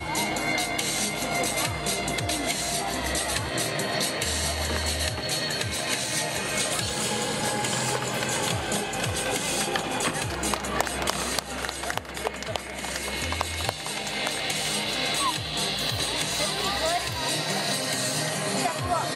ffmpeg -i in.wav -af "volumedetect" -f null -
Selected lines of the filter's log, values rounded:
mean_volume: -27.9 dB
max_volume: -10.9 dB